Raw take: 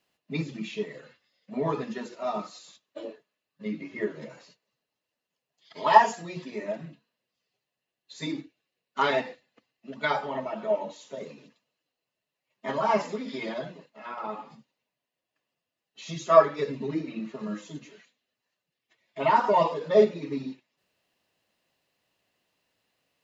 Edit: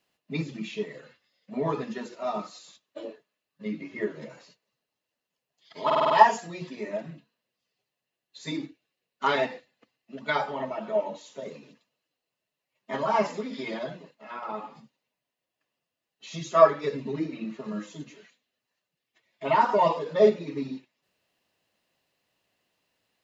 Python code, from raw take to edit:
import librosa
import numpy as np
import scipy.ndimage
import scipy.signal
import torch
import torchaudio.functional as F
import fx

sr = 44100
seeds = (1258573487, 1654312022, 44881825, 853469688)

y = fx.edit(x, sr, fx.stutter(start_s=5.85, slice_s=0.05, count=6), tone=tone)